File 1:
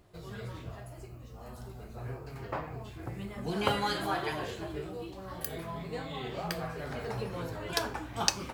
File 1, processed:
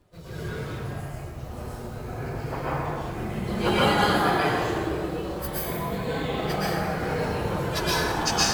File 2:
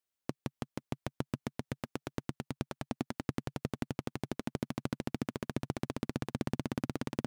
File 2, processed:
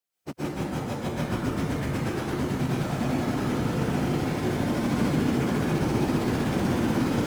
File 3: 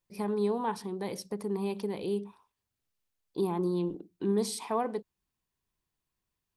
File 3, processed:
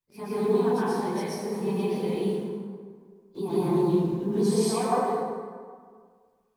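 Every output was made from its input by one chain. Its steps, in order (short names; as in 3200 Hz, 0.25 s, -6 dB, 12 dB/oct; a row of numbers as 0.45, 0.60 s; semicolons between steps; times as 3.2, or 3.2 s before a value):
phase scrambler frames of 50 ms; in parallel at -9.5 dB: bit-crush 8-bit; on the sum: plate-style reverb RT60 1.8 s, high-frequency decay 0.55×, pre-delay 0.105 s, DRR -9 dB; match loudness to -27 LUFS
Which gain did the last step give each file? -2.0, +1.0, -6.0 dB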